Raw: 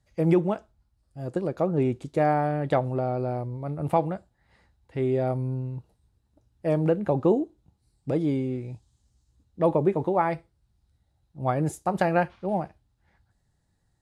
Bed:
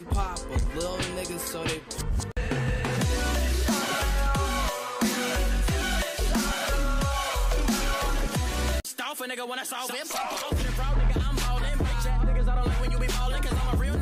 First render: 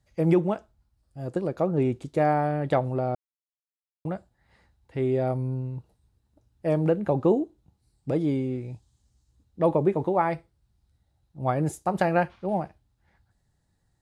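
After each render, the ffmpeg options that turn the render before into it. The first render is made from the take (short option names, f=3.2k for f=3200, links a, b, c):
-filter_complex "[0:a]asplit=3[a][b][c];[a]atrim=end=3.15,asetpts=PTS-STARTPTS,afade=t=out:st=3.146:d=0.004:c=hsin[d];[b]atrim=start=3.15:end=4.05,asetpts=PTS-STARTPTS,volume=0[e];[c]atrim=start=4.05,asetpts=PTS-STARTPTS,afade=t=in:d=0.004:c=hsin[f];[d][e][f]concat=n=3:v=0:a=1"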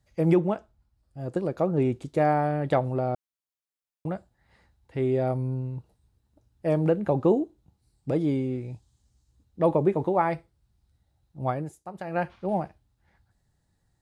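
-filter_complex "[0:a]asettb=1/sr,asplit=3[a][b][c];[a]atrim=end=0.364[d];[b]atrim=start=0.36:end=1.32,asetpts=PTS-STARTPTS,afade=t=in:d=0.004:c=qsin,afade=t=out:st=0.956:d=0.004:c=qsin,highshelf=f=4.6k:g=-5[e];[c]atrim=start=1.316[f];[d][e]acrossfade=d=0.004:c1=hsin:c2=qsin[g];[g][f]acrossfade=d=0.004:c1=qsin:c2=hsin,asplit=3[h][i][j];[h]atrim=end=11.7,asetpts=PTS-STARTPTS,afade=t=out:st=11.42:d=0.28:silence=0.211349[k];[i]atrim=start=11.7:end=12.05,asetpts=PTS-STARTPTS,volume=-13.5dB[l];[j]atrim=start=12.05,asetpts=PTS-STARTPTS,afade=t=in:d=0.28:silence=0.211349[m];[k][l][m]concat=n=3:v=0:a=1"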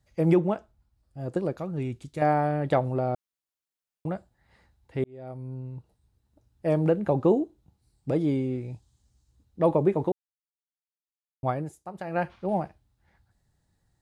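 -filter_complex "[0:a]asettb=1/sr,asplit=3[a][b][c];[a]atrim=end=1.574[d];[b]atrim=start=1.57:end=2.22,asetpts=PTS-STARTPTS,afade=t=in:d=0.004:c=qsin,afade=t=out:st=0.646:d=0.004:c=qsin,equalizer=f=520:w=0.45:g=-11.5[e];[c]atrim=start=2.216[f];[d][e]acrossfade=d=0.004:c1=hsin:c2=qsin[g];[g][f]acrossfade=d=0.004:c1=qsin:c2=hsin,asplit=4[h][i][j][k];[h]atrim=end=5.04,asetpts=PTS-STARTPTS,afade=t=out:st=5.036:d=0.004:c=hsin[l];[i]atrim=start=5.04:end=10.12,asetpts=PTS-STARTPTS,afade=t=in:d=1.71:c=qsin,afade=t=out:st=5.076:d=0.004:c=hsin[m];[j]atrim=start=10.12:end=11.43,asetpts=PTS-STARTPTS,volume=0[n];[k]atrim=start=11.43,asetpts=PTS-STARTPTS,afade=t=in:d=0.004:c=hsin[o];[l][m][n][o]concat=n=4:v=0:a=1"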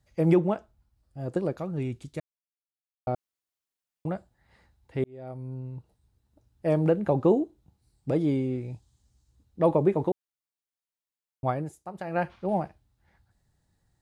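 -filter_complex "[0:a]asplit=3[a][b][c];[a]atrim=end=2.2,asetpts=PTS-STARTPTS,afade=t=out:st=2.196:d=0.004:c=hsin[d];[b]atrim=start=2.2:end=3.07,asetpts=PTS-STARTPTS,volume=0[e];[c]atrim=start=3.07,asetpts=PTS-STARTPTS,afade=t=in:d=0.004:c=hsin[f];[d][e][f]concat=n=3:v=0:a=1"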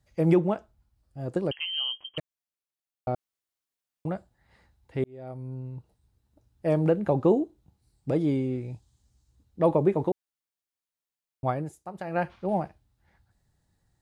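-filter_complex "[0:a]asettb=1/sr,asplit=3[a][b][c];[a]atrim=end=1.514[d];[b]atrim=start=1.51:end=2.18,asetpts=PTS-STARTPTS,afade=t=in:d=0.004:c=qsin,afade=t=out:st=0.666:d=0.004:c=qsin,lowpass=f=2.8k:t=q:w=0.5098,lowpass=f=2.8k:t=q:w=0.6013,lowpass=f=2.8k:t=q:w=0.9,lowpass=f=2.8k:t=q:w=2.563,afreqshift=-3300[e];[c]atrim=start=2.176[f];[d][e]acrossfade=d=0.004:c1=hsin:c2=qsin[g];[g][f]acrossfade=d=0.004:c1=qsin:c2=hsin"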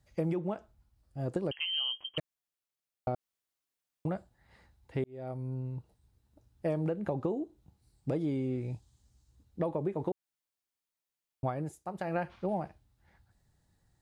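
-af "alimiter=limit=-15dB:level=0:latency=1:release=346,acompressor=threshold=-29dB:ratio=6"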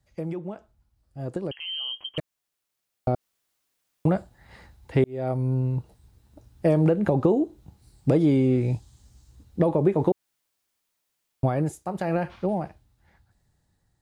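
-filter_complex "[0:a]acrossover=split=520|4000[a][b][c];[b]alimiter=level_in=10.5dB:limit=-24dB:level=0:latency=1:release=14,volume=-10.5dB[d];[a][d][c]amix=inputs=3:normalize=0,dynaudnorm=f=530:g=9:m=12.5dB"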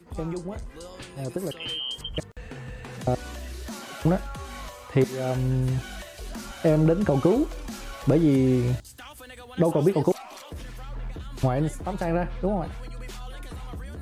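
-filter_complex "[1:a]volume=-11.5dB[a];[0:a][a]amix=inputs=2:normalize=0"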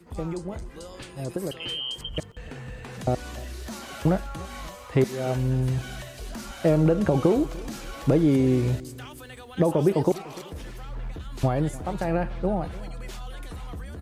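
-filter_complex "[0:a]asplit=2[a][b];[b]adelay=296,lowpass=f=2k:p=1,volume=-19dB,asplit=2[c][d];[d]adelay=296,lowpass=f=2k:p=1,volume=0.41,asplit=2[e][f];[f]adelay=296,lowpass=f=2k:p=1,volume=0.41[g];[a][c][e][g]amix=inputs=4:normalize=0"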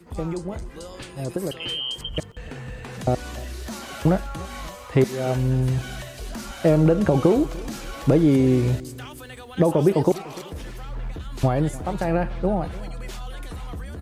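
-af "volume=3dB"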